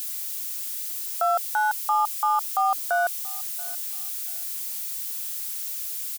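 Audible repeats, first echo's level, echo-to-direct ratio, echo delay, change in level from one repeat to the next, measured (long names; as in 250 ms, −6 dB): 2, −22.0 dB, −21.5 dB, 681 ms, −12.0 dB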